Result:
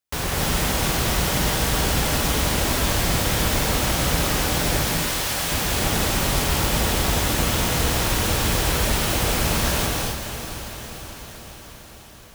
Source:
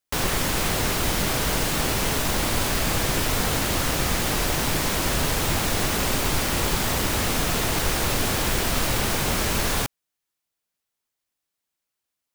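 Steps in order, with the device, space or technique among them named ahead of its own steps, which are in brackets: 4.84–5.52 HPF 1200 Hz 6 dB/oct; HPF 41 Hz; low shelf boost with a cut just above (low shelf 95 Hz +7.5 dB; bell 290 Hz -2.5 dB 0.77 oct); diffused feedback echo 0.485 s, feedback 64%, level -10 dB; non-linear reverb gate 0.3 s rising, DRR -1 dB; gain -2.5 dB

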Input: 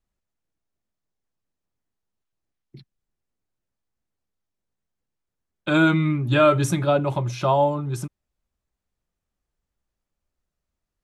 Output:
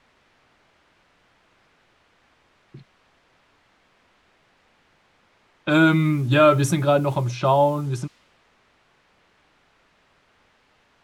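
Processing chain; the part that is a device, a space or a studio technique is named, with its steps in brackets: cassette deck with a dynamic noise filter (white noise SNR 27 dB; low-pass opened by the level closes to 2100 Hz, open at -19 dBFS); gain +1.5 dB

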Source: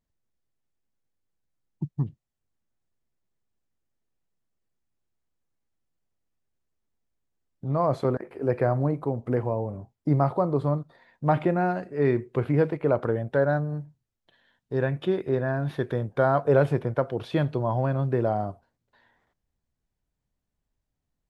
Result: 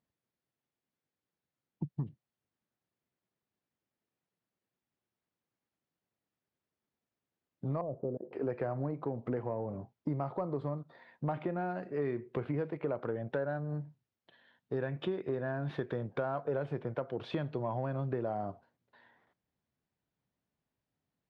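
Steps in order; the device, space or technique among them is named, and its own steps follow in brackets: AM radio (BPF 130–4000 Hz; compressor 6:1, threshold -31 dBFS, peak gain reduction 15 dB; soft clip -20.5 dBFS, distortion -26 dB); 7.81–8.33 Chebyshev low-pass 580 Hz, order 3

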